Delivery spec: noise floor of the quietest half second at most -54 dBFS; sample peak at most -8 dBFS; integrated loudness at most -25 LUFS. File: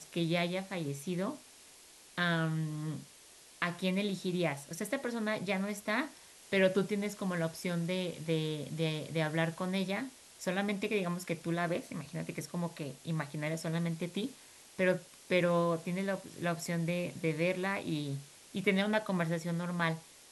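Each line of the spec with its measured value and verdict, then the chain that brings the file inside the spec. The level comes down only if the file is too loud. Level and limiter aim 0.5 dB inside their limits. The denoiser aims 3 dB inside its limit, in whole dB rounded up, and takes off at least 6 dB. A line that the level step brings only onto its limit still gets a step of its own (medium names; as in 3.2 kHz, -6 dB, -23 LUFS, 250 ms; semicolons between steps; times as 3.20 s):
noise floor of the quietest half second -57 dBFS: pass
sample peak -15.5 dBFS: pass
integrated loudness -34.5 LUFS: pass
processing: none needed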